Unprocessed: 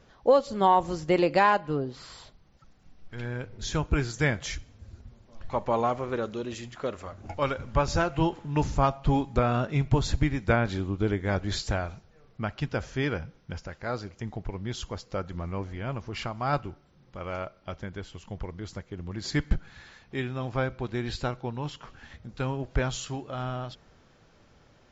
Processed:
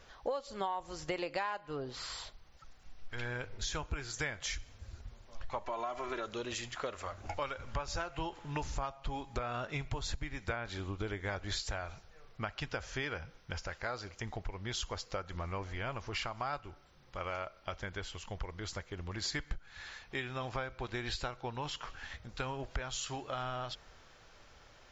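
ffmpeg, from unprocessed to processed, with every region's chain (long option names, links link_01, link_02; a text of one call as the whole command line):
ffmpeg -i in.wav -filter_complex "[0:a]asettb=1/sr,asplit=3[link_01][link_02][link_03];[link_01]atrim=end=5.644[link_04];[link_02]atrim=start=5.64:end=6.26,asetpts=PTS-STARTPTS,afade=type=in:duration=0.004:curve=qsin,afade=type=out:start_time=0.616:duration=0.004:curve=qsin,equalizer=frequency=97:width_type=o:width=1.8:gain=-6.5,aecho=1:1:3:0.8,atrim=end_sample=27342,acompressor=threshold=-27dB:ratio=2.5:attack=3.2:release=140:knee=1:detection=peak[link_05];[link_03]atrim=start=6.256[link_06];[link_04][link_05]acrossfade=duration=0.004:curve1=hsin:curve2=qsin[link_07];[link_07][link_06]acrossfade=duration=0.004:curve1=qsin:curve2=hsin,equalizer=frequency=190:width=0.48:gain=-13.5,acompressor=threshold=-39dB:ratio=6,volume=4.5dB" out.wav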